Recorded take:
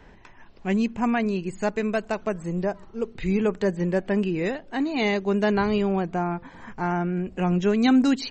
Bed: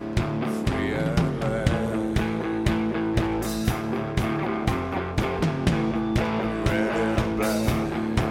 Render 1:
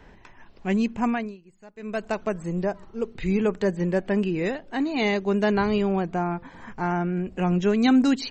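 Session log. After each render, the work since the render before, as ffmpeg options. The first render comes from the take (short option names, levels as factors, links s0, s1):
-filter_complex "[0:a]asplit=3[s0][s1][s2];[s0]atrim=end=1.37,asetpts=PTS-STARTPTS,afade=t=out:st=1.06:d=0.31:silence=0.0749894[s3];[s1]atrim=start=1.37:end=1.76,asetpts=PTS-STARTPTS,volume=0.075[s4];[s2]atrim=start=1.76,asetpts=PTS-STARTPTS,afade=t=in:d=0.31:silence=0.0749894[s5];[s3][s4][s5]concat=n=3:v=0:a=1"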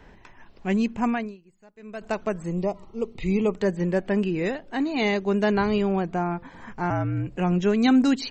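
-filter_complex "[0:a]asettb=1/sr,asplit=3[s0][s1][s2];[s0]atrim=end=2.544[s3];[s1]atrim=start=2.54:end=3.56,asetpts=PTS-STARTPTS,afade=t=in:d=0.004:c=qsin,afade=t=out:st=1.016:d=0.004:c=qsin,asuperstop=centerf=1600:order=4:qfactor=2.4[s4];[s2]atrim=start=3.556[s5];[s3][s4]acrossfade=d=0.004:c1=hsin:c2=qsin[s6];[s6][s5]acrossfade=d=0.004:c1=qsin:c2=hsin,asettb=1/sr,asplit=3[s7][s8][s9];[s7]atrim=end=6.904[s10];[s8]atrim=start=6.9:end=7.37,asetpts=PTS-STARTPTS,afade=t=in:d=0.004:c=qsin,afade=t=out:st=0.466:d=0.004:c=qsin,afreqshift=-59[s11];[s9]atrim=start=7.366[s12];[s10][s11]acrossfade=d=0.004:c1=hsin:c2=qsin[s13];[s13][s12]acrossfade=d=0.004:c1=qsin:c2=hsin,asplit=2[s14][s15];[s14]atrim=end=2.01,asetpts=PTS-STARTPTS,afade=t=out:st=1.23:d=0.78:c=qua:silence=0.421697[s16];[s15]atrim=start=2.01,asetpts=PTS-STARTPTS,afade=t=in:d=0.004:c=hsin:silence=0.421697[s17];[s16][s17]concat=n=2:v=0:a=1"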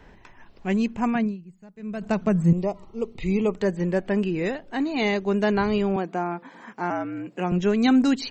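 -filter_complex "[0:a]asettb=1/sr,asplit=3[s0][s1][s2];[s0]atrim=end=1.154[s3];[s1]atrim=start=1.15:end=2.53,asetpts=PTS-STARTPTS,afade=t=in:d=0.004:c=qsin,afade=t=out:st=1.376:d=0.004:c=qsin,equalizer=f=170:w=1.5:g=15[s4];[s2]atrim=start=2.526[s5];[s3][s4]acrossfade=d=0.004:c1=hsin:c2=qsin[s6];[s6][s5]acrossfade=d=0.004:c1=qsin:c2=hsin,asettb=1/sr,asplit=3[s7][s8][s9];[s7]atrim=end=5.964[s10];[s8]atrim=start=5.96:end=7.52,asetpts=PTS-STARTPTS,afade=t=in:d=0.004:c=qsin,afade=t=out:st=1.556:d=0.004:c=qsin,highpass=f=200:w=0.5412,highpass=f=200:w=1.3066[s11];[s9]atrim=start=7.516[s12];[s10][s11]acrossfade=d=0.004:c1=hsin:c2=qsin[s13];[s13][s12]acrossfade=d=0.004:c1=qsin:c2=hsin"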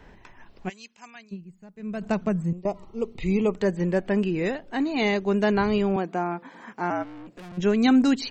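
-filter_complex "[0:a]asplit=3[s0][s1][s2];[s0]afade=t=out:st=0.68:d=0.02[s3];[s1]bandpass=f=5400:t=q:w=1.5,afade=t=in:st=0.68:d=0.02,afade=t=out:st=1.31:d=0.02[s4];[s2]afade=t=in:st=1.31:d=0.02[s5];[s3][s4][s5]amix=inputs=3:normalize=0,asplit=3[s6][s7][s8];[s6]afade=t=out:st=7.02:d=0.02[s9];[s7]aeval=exprs='(tanh(100*val(0)+0.4)-tanh(0.4))/100':c=same,afade=t=in:st=7.02:d=0.02,afade=t=out:st=7.57:d=0.02[s10];[s8]afade=t=in:st=7.57:d=0.02[s11];[s9][s10][s11]amix=inputs=3:normalize=0,asplit=2[s12][s13];[s12]atrim=end=2.65,asetpts=PTS-STARTPTS,afade=t=out:st=1.88:d=0.77:c=qsin:silence=0.0944061[s14];[s13]atrim=start=2.65,asetpts=PTS-STARTPTS,afade=t=in:d=0.004:c=hsin:silence=0.0944061[s15];[s14][s15]concat=n=2:v=0:a=1"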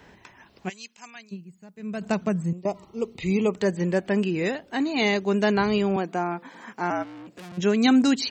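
-af "highpass=83,highshelf=f=3200:g=7.5"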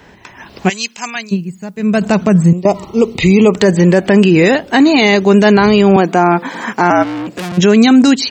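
-af "dynaudnorm=f=170:g=5:m=3.98,alimiter=level_in=2.99:limit=0.891:release=50:level=0:latency=1"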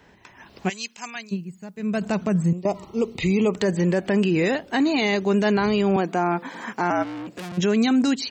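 -af "volume=0.251"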